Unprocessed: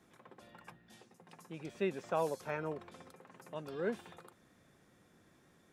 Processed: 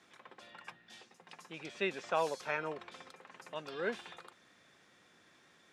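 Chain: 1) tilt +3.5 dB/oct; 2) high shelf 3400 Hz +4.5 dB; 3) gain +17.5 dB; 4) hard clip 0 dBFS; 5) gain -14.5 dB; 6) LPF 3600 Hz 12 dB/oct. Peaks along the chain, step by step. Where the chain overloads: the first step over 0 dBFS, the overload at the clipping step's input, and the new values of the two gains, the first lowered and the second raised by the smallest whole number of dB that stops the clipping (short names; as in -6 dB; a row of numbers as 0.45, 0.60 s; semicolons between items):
-21.5, -20.5, -3.0, -3.0, -17.5, -18.5 dBFS; no overload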